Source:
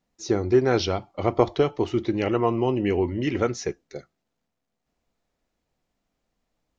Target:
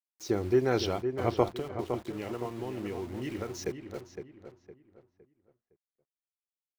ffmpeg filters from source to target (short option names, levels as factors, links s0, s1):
-filter_complex "[0:a]asettb=1/sr,asplit=3[s0][s1][s2];[s0]atrim=end=1.484[s3];[s1]atrim=start=1.48:end=3.54,asetpts=PTS-STARTPTS,afade=t=in:d=0.004:c=qsin,afade=t=out:st=2.056:d=0.004:c=qsin,acompressor=threshold=0.0447:ratio=8[s4];[s2]atrim=start=3.536[s5];[s3][s4]acrossfade=d=0.004:c1=hsin:c2=qsin[s6];[s6][s5]acrossfade=d=0.004:c1=qsin:c2=hsin,aeval=exprs='val(0)*gte(abs(val(0)),0.0112)':c=same,asplit=2[s7][s8];[s8]adelay=511,lowpass=f=2300:p=1,volume=0.422,asplit=2[s9][s10];[s10]adelay=511,lowpass=f=2300:p=1,volume=0.35,asplit=2[s11][s12];[s12]adelay=511,lowpass=f=2300:p=1,volume=0.35,asplit=2[s13][s14];[s14]adelay=511,lowpass=f=2300:p=1,volume=0.35[s15];[s7][s9][s11][s13][s15]amix=inputs=5:normalize=0,volume=0.501"